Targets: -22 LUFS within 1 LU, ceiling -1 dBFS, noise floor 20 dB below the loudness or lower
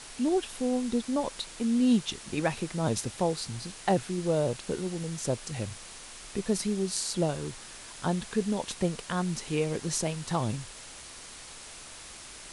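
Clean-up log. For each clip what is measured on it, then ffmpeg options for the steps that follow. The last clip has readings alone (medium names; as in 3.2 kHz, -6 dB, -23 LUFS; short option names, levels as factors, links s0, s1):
noise floor -46 dBFS; noise floor target -51 dBFS; loudness -30.5 LUFS; peak level -11.5 dBFS; loudness target -22.0 LUFS
-> -af "afftdn=nr=6:nf=-46"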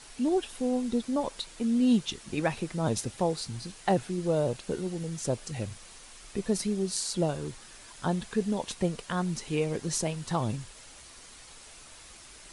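noise floor -50 dBFS; noise floor target -51 dBFS
-> -af "afftdn=nr=6:nf=-50"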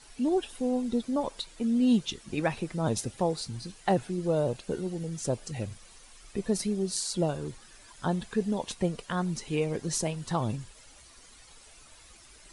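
noise floor -54 dBFS; loudness -30.5 LUFS; peak level -12.0 dBFS; loudness target -22.0 LUFS
-> -af "volume=2.66"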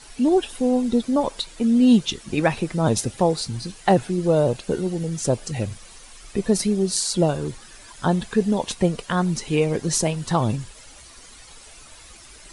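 loudness -22.0 LUFS; peak level -3.5 dBFS; noise floor -46 dBFS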